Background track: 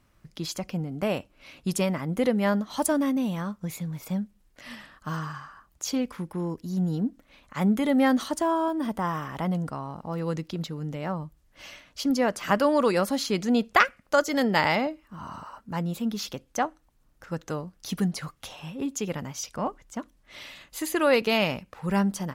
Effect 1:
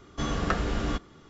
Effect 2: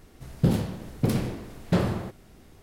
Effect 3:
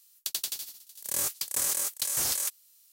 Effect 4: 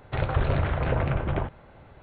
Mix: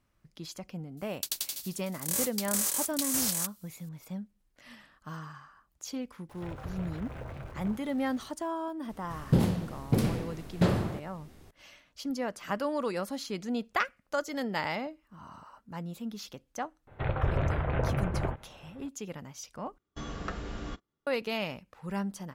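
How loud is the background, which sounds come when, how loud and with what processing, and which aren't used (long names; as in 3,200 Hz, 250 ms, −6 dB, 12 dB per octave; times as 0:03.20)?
background track −9.5 dB
0:00.97: mix in 3 −1.5 dB
0:06.29: mix in 4 −17.5 dB + converter with a step at zero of −34 dBFS
0:08.89: mix in 2 −2 dB
0:16.87: mix in 4 −4 dB + low-pass filter 3,000 Hz
0:19.78: overwrite with 1 −10 dB + noise gate −41 dBFS, range −23 dB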